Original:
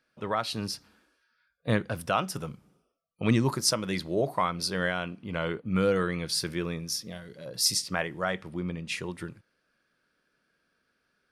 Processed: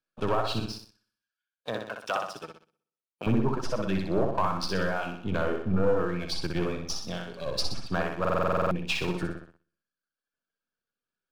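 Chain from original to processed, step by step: half-wave gain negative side -12 dB; compressor 2:1, threshold -40 dBFS, peak gain reduction 11.5 dB; treble ducked by the level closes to 1200 Hz, closed at -32.5 dBFS; reverb removal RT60 1.6 s; 0.59–3.26 HPF 850 Hz 6 dB/oct; flutter echo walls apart 10.7 m, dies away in 0.7 s; sample leveller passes 2; notch 2000 Hz, Q 5.3; stuck buffer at 8.2, samples 2048, times 10; three-band expander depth 40%; gain +7 dB

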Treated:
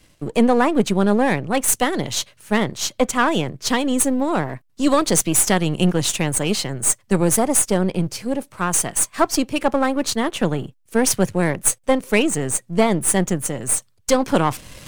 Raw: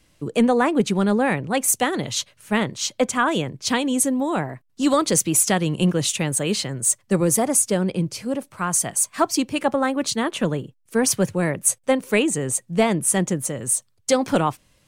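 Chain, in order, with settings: half-wave gain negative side -7 dB; reverse; upward compressor, threshold -27 dBFS; reverse; gain +4 dB

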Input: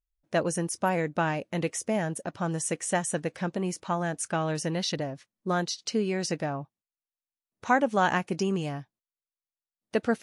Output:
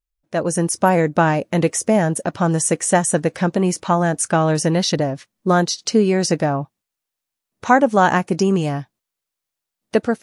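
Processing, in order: dynamic EQ 2800 Hz, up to -6 dB, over -44 dBFS, Q 0.91; AGC gain up to 11 dB; gain +1.5 dB

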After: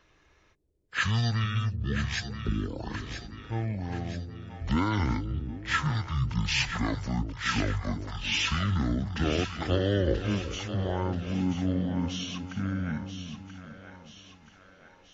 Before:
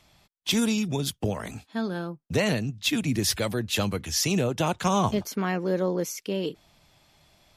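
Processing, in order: split-band echo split 1000 Hz, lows 0.19 s, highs 0.491 s, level -9 dB; speed mistake 15 ips tape played at 7.5 ips; gain -3 dB

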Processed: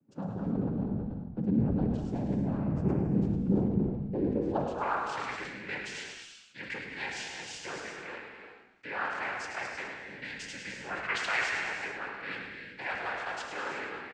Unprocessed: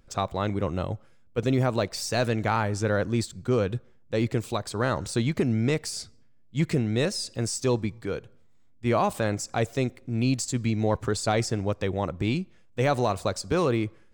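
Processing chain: recorder AGC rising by 14 dB/s; 10.98–11.61 bell 2000 Hz +10.5 dB 1.9 oct; soft clip -18.5 dBFS, distortion -15 dB; noise vocoder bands 8; band-pass sweep 210 Hz -> 1900 Hz, 4.04–5.13; frequency-shifting echo 0.105 s, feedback 35%, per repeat -58 Hz, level -7 dB; non-linear reverb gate 0.4 s flat, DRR 2 dB; sustainer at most 61 dB/s; gain +2.5 dB

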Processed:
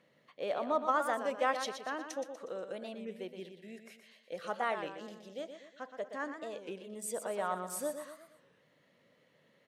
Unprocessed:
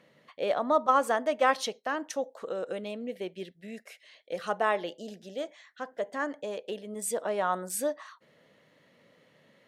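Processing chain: on a send: feedback echo 0.121 s, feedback 45%, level -8.5 dB; on the sum: record warp 33 1/3 rpm, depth 160 cents; gain -7 dB

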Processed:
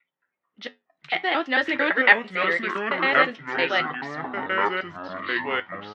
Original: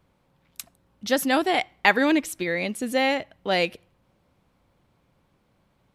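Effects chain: slices in reverse order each 0.112 s, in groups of 5; spectral noise reduction 17 dB; flange 0.51 Hz, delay 6.8 ms, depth 4.5 ms, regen -73%; echoes that change speed 0.216 s, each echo -6 st, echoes 3; speaker cabinet 340–4100 Hz, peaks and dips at 1300 Hz +5 dB, 1900 Hz +10 dB, 3100 Hz +4 dB; doubler 12 ms -12 dB; mismatched tape noise reduction decoder only; gain +1.5 dB

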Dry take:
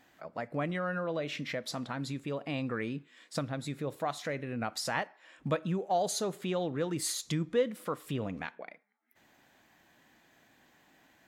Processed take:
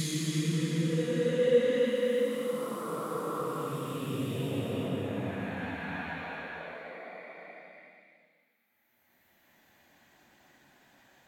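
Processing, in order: thin delay 0.173 s, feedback 36%, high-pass 4400 Hz, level -14.5 dB; Paulstretch 5×, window 0.50 s, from 7.25; gain +2.5 dB

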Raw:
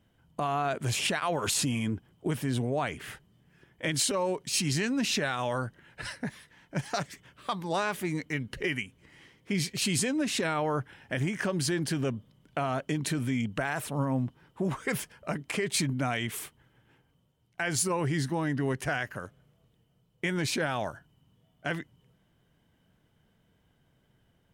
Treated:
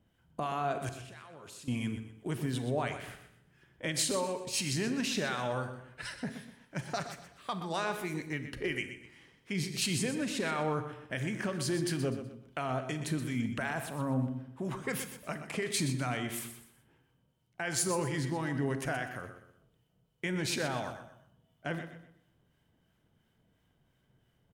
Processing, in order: 0.89–1.68 level quantiser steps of 24 dB; harmonic tremolo 2.9 Hz, depth 50%, crossover 1000 Hz; feedback echo 0.124 s, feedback 32%, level -10.5 dB; on a send at -11 dB: reverb RT60 0.70 s, pre-delay 30 ms; on the sum: gain -2 dB

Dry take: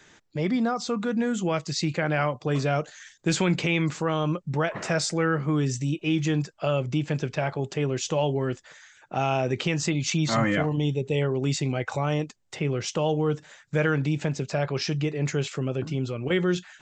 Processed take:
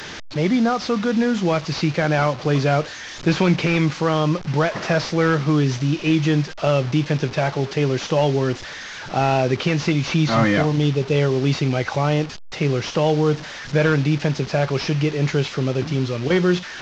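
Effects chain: delta modulation 32 kbps, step -34 dBFS; gain +6.5 dB

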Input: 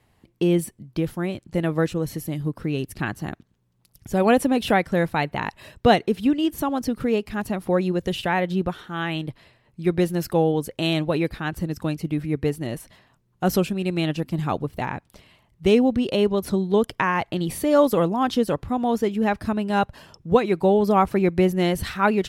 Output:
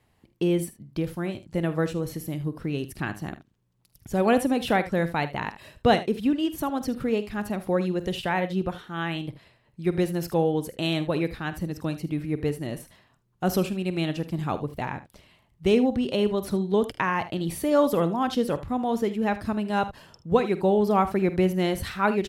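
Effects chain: early reflections 48 ms -15 dB, 77 ms -15.5 dB; gain -3.5 dB

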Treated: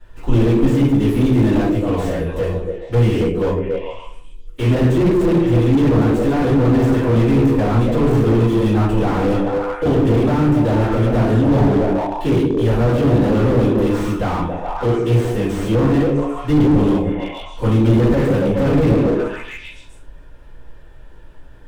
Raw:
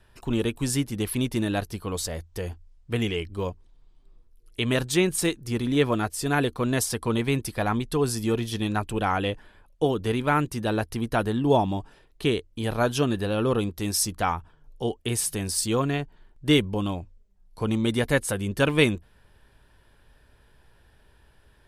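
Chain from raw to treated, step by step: median filter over 9 samples; on a send: delay with a stepping band-pass 0.138 s, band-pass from 280 Hz, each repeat 0.7 oct, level -1 dB; on the sum: shoebox room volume 43 m³, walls mixed, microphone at 2.5 m; slew limiter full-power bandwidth 110 Hz; gain -2.5 dB

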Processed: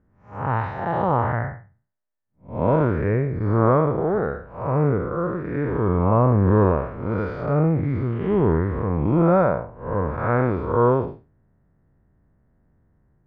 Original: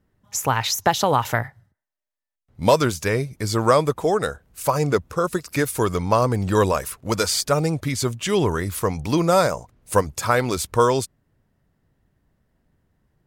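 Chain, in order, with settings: time blur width 0.205 s; LPF 1800 Hz 24 dB/oct; low shelf 380 Hz +4 dB; gain +2.5 dB

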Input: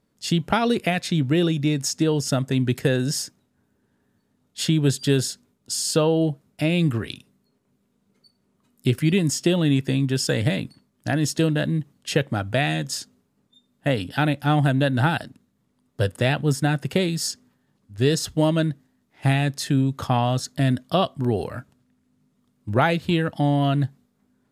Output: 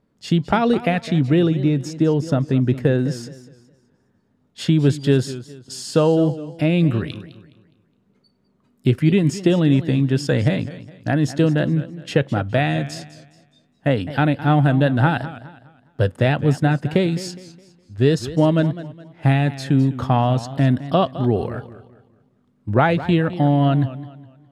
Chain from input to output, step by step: LPF 1700 Hz 6 dB/oct, from 1.47 s 1000 Hz, from 3.23 s 1800 Hz; warbling echo 0.207 s, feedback 35%, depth 121 cents, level -15 dB; gain +4 dB

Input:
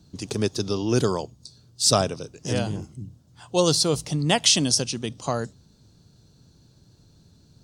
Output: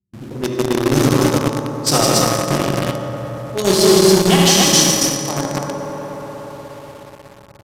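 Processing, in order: gate with hold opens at -46 dBFS; formant-preserving pitch shift +3 st; low-pass opened by the level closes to 320 Hz, open at -16.5 dBFS; loudspeakers at several distances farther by 26 m -6 dB, 55 m -4 dB, 96 m -1 dB; reverb RT60 4.6 s, pre-delay 3 ms, DRR -3 dB; in parallel at -7 dB: companded quantiser 2-bit; on the sum: downsampling 32000 Hz; gain -4 dB

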